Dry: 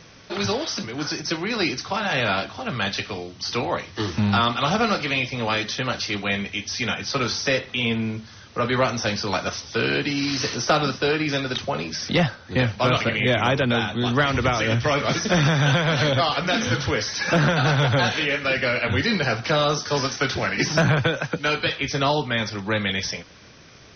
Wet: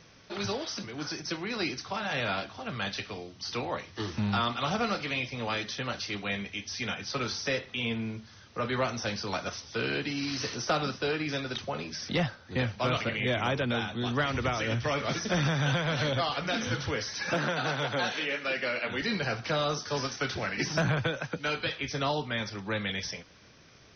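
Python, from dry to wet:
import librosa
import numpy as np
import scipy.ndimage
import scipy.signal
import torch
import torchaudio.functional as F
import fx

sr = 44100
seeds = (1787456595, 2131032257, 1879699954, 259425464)

y = fx.highpass(x, sr, hz=220.0, slope=12, at=(17.34, 19.02))
y = F.gain(torch.from_numpy(y), -8.5).numpy()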